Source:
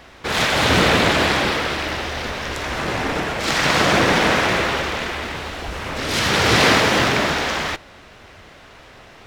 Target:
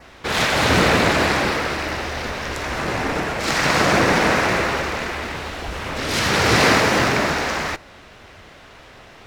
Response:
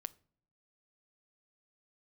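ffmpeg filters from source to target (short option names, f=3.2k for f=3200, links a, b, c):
-af "adynamicequalizer=threshold=0.0126:dfrequency=3300:dqfactor=3:tfrequency=3300:tqfactor=3:attack=5:release=100:ratio=0.375:range=3.5:mode=cutabove:tftype=bell"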